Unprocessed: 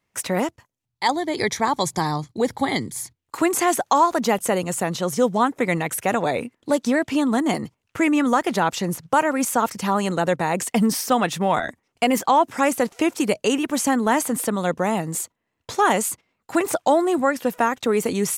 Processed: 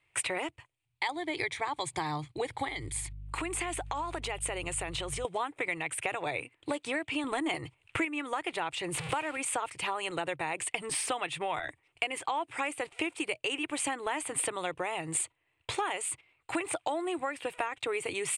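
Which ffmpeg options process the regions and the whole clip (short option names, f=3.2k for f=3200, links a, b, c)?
-filter_complex "[0:a]asettb=1/sr,asplit=3[a][b][c];[a]atrim=end=2.684[d];[b]atrim=start=2.68:end=5.25,asetpts=PTS-STARTPTS,afade=t=in:d=0.004:c=qsin,afade=t=out:st=2.566:d=0.004:c=qsin,acompressor=threshold=-28dB:ratio=5:attack=3.2:release=140:knee=1:detection=peak,aeval=exprs='val(0)+0.00891*(sin(2*PI*50*n/s)+sin(2*PI*2*50*n/s)/2+sin(2*PI*3*50*n/s)/3+sin(2*PI*4*50*n/s)/4+sin(2*PI*5*50*n/s)/5)':c=same[e];[c]atrim=start=5.246[f];[d][e]acrossfade=d=0.004:c1=hsin:c2=qsin[g];[g][f]acrossfade=d=0.004:c1=qsin:c2=hsin,asettb=1/sr,asplit=3[h][i][j];[h]atrim=end=7.244[k];[i]atrim=start=7.24:end=8.05,asetpts=PTS-STARTPTS,afade=t=in:d=0.004:c=qsin,afade=t=out:st=0.806:d=0.004:c=qsin,bandreject=f=4.7k:w=25,acontrast=70[l];[j]atrim=start=8.046[m];[k][l]acrossfade=d=0.004:c1=hsin:c2=qsin[n];[n][m]acrossfade=d=0.004:c1=qsin:c2=hsin,asettb=1/sr,asplit=3[o][p][q];[o]atrim=end=8.944[r];[p]atrim=start=8.94:end=9.37,asetpts=PTS-STARTPTS,afade=t=in:d=0.004:c=qsin,afade=t=out:st=0.426:d=0.004:c=qsin,aeval=exprs='val(0)+0.5*0.0398*sgn(val(0))':c=same,highpass=61[s];[q]atrim=start=9.366[t];[r][s]acrossfade=d=0.004:c1=hsin:c2=qsin[u];[u][t]acrossfade=d=0.004:c1=qsin:c2=hsin,firequalizer=gain_entry='entry(140,0);entry(210,-28);entry(300,-2);entry(520,-5);entry(780,-1);entry(1600,-1);entry(2400,10);entry(5800,-13);entry(8700,-1);entry(13000,-25)':delay=0.05:min_phase=1,acompressor=threshold=-31dB:ratio=5,equalizer=f=9.1k:w=2.7:g=6"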